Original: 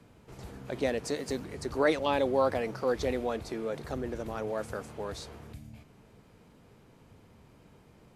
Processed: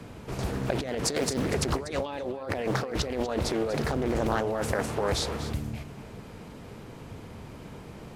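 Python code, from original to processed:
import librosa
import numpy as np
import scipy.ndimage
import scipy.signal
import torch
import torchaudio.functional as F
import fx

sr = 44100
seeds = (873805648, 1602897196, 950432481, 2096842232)

y = fx.over_compress(x, sr, threshold_db=-38.0, ratio=-1.0)
y = y + 10.0 ** (-13.0 / 20.0) * np.pad(y, (int(242 * sr / 1000.0), 0))[:len(y)]
y = fx.doppler_dist(y, sr, depth_ms=0.62)
y = F.gain(torch.from_numpy(y), 8.5).numpy()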